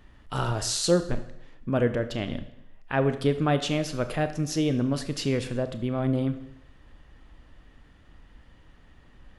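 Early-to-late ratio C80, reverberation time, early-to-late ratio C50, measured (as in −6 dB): 14.5 dB, 0.80 s, 12.0 dB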